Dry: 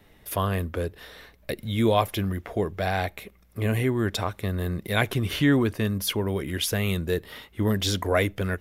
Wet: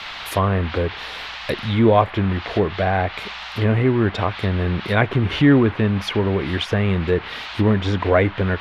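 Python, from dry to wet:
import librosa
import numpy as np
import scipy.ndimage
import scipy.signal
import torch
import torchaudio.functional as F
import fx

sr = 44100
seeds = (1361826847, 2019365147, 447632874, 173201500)

y = fx.dmg_noise_band(x, sr, seeds[0], low_hz=690.0, high_hz=3900.0, level_db=-40.0)
y = fx.env_lowpass_down(y, sr, base_hz=1900.0, full_db=-22.0)
y = y * 10.0 ** (7.0 / 20.0)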